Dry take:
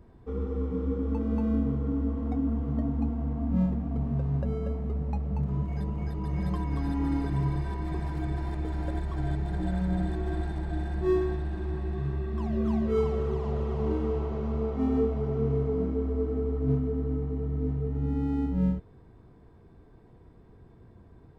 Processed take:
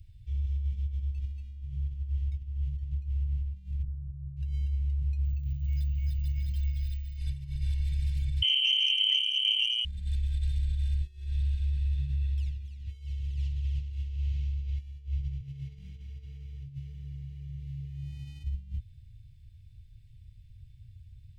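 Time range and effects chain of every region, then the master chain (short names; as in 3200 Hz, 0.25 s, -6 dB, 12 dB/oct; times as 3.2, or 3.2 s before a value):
3.83–4.37 running mean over 37 samples + doubler 49 ms -11 dB + fast leveller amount 70%
5.25–7.17 careless resampling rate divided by 2×, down none, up hold + notches 50/100/150/200/250/300/350/400/450/500 Hz
8.42–9.85 inverted band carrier 3100 Hz + core saturation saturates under 1400 Hz
15.41–18.44 HPF 110 Hz 24 dB/oct + flutter echo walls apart 10.3 m, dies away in 0.3 s
whole clip: negative-ratio compressor -30 dBFS, ratio -0.5; elliptic band-stop 110–2700 Hz, stop band 40 dB; gain +3.5 dB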